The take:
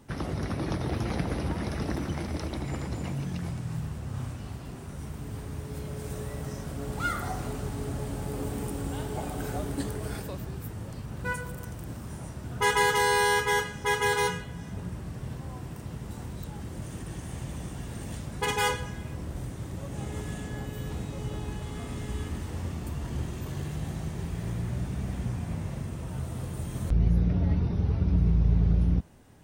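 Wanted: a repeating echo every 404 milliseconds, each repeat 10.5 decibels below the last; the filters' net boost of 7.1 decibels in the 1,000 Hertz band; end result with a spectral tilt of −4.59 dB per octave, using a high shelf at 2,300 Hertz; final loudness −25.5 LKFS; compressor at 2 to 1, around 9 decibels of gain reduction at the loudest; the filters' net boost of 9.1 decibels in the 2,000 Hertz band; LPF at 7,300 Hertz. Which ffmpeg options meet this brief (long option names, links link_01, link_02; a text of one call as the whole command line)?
ffmpeg -i in.wav -af "lowpass=7300,equalizer=frequency=1000:width_type=o:gain=5.5,equalizer=frequency=2000:width_type=o:gain=5.5,highshelf=frequency=2300:gain=8.5,acompressor=threshold=-30dB:ratio=2,aecho=1:1:404|808|1212:0.299|0.0896|0.0269,volume=7dB" out.wav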